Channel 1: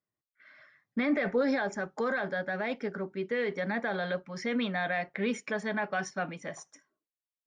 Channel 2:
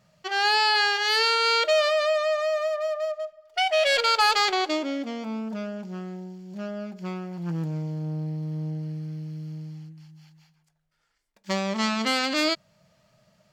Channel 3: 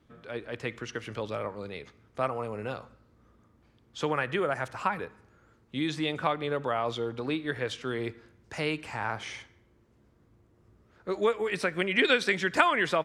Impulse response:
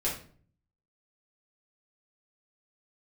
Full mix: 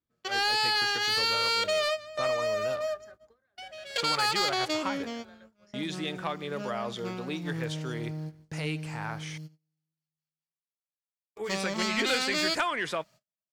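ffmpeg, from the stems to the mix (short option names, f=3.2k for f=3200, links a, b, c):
-filter_complex "[0:a]highpass=380,equalizer=f=900:t=o:w=0.34:g=-6.5,acompressor=threshold=-36dB:ratio=20,adelay=1300,volume=-16dB[a];[1:a]lowshelf=f=92:g=-9.5,alimiter=limit=-16dB:level=0:latency=1:release=270,volume=-3.5dB[b];[2:a]volume=-5dB,asplit=3[c][d][e];[c]atrim=end=9.38,asetpts=PTS-STARTPTS,afade=t=out:st=9.376:d=0.004:c=hsin[f];[d]atrim=start=9.38:end=11.36,asetpts=PTS-STARTPTS,volume=0[g];[e]atrim=start=11.36,asetpts=PTS-STARTPTS,afade=t=in:d=0.004:c=hsin[h];[f][g][h]concat=n=3:v=0:a=1,asplit=2[i][j];[j]apad=whole_len=596233[k];[b][k]sidechaingate=range=-18dB:threshold=-58dB:ratio=16:detection=peak[l];[a][l][i]amix=inputs=3:normalize=0,agate=range=-22dB:threshold=-51dB:ratio=16:detection=peak,highshelf=f=4.1k:g=8.5,asoftclip=type=tanh:threshold=-18.5dB"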